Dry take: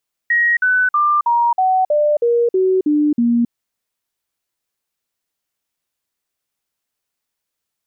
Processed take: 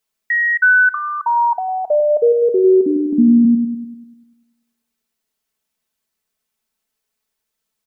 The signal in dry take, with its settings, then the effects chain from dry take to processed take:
stepped sine 1890 Hz down, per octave 3, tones 10, 0.27 s, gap 0.05 s -11.5 dBFS
comb 4.6 ms, depth 74%; on a send: dark delay 98 ms, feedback 55%, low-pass 460 Hz, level -3.5 dB

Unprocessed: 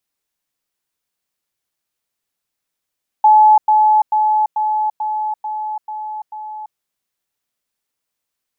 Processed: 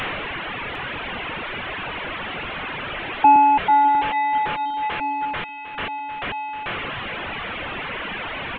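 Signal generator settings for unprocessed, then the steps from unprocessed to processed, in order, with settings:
level ladder 857 Hz -5.5 dBFS, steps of -3 dB, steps 8, 0.34 s 0.10 s
delta modulation 16 kbps, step -19 dBFS; reverb removal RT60 1.7 s; echo 0.753 s -14 dB

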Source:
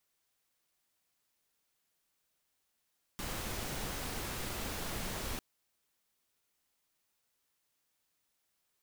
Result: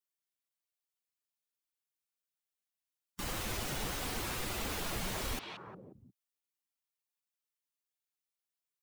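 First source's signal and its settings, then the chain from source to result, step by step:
noise pink, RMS -39 dBFS 2.20 s
per-bin expansion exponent 1.5; delay with a stepping band-pass 0.178 s, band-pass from 2800 Hz, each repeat -1.4 oct, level -4 dB; in parallel at +2 dB: limiter -38.5 dBFS

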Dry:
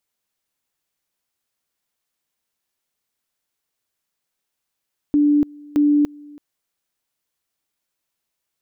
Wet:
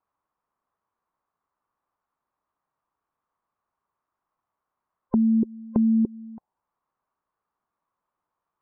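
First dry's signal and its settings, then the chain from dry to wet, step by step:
two-level tone 293 Hz -12 dBFS, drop 25.5 dB, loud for 0.29 s, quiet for 0.33 s, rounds 2
band inversion scrambler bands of 500 Hz; compressor 4:1, threshold -23 dBFS; envelope low-pass 380–1100 Hz down, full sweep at -26 dBFS

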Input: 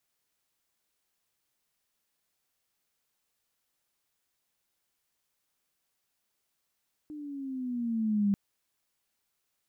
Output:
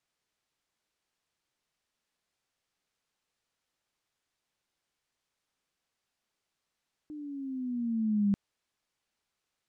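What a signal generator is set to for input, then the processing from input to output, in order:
gliding synth tone sine, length 1.24 s, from 305 Hz, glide -7.5 st, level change +17 dB, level -22 dB
air absorption 58 m

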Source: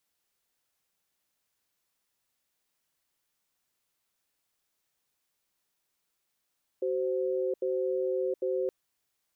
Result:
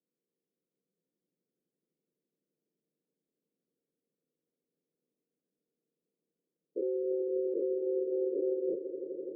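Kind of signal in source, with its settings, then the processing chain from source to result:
cadence 377 Hz, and 520 Hz, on 0.72 s, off 0.08 s, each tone -29.5 dBFS 1.87 s
spectral dilation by 0.12 s; Chebyshev band-pass 160–480 Hz, order 3; swelling echo 84 ms, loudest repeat 8, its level -11.5 dB

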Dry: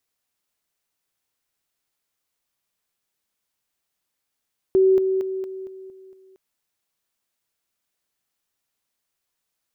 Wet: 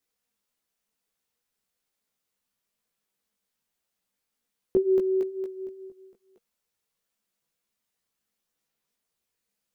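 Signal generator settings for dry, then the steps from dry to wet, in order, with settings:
level ladder 380 Hz -12.5 dBFS, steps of -6 dB, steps 7, 0.23 s 0.00 s
small resonant body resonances 210/470 Hz, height 7 dB; chorus voices 4, 0.42 Hz, delay 17 ms, depth 3.1 ms

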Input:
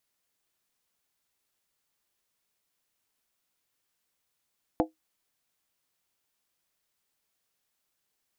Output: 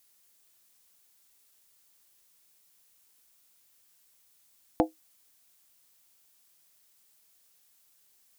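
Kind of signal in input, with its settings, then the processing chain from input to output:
skin hit, lowest mode 317 Hz, modes 5, decay 0.15 s, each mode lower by 2 dB, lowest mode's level -19.5 dB
high shelf 4400 Hz +11 dB; in parallel at -1 dB: limiter -21.5 dBFS

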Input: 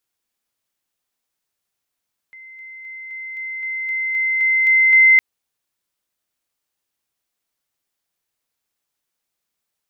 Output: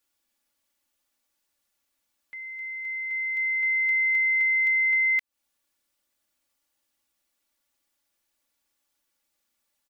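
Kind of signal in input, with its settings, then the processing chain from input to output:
level ladder 2070 Hz -37.5 dBFS, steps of 3 dB, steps 11, 0.26 s 0.00 s
comb 3.5 ms, depth 78%; compressor 16:1, threshold -21 dBFS

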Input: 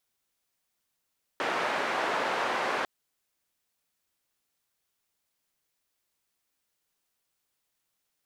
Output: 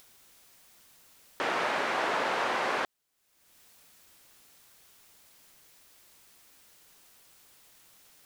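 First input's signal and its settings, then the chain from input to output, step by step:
noise band 390–1400 Hz, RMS -29.5 dBFS 1.45 s
upward compressor, threshold -41 dBFS

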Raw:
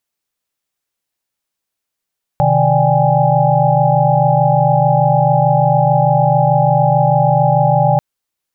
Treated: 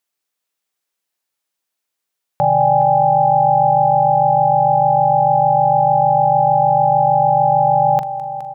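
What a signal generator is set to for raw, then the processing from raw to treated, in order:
chord C3/D#3/D5/G5/G#5 sine, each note -15.5 dBFS 5.59 s
HPF 290 Hz 6 dB/oct; doubler 42 ms -13 dB; on a send: multi-head echo 0.208 s, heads first and second, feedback 64%, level -16.5 dB

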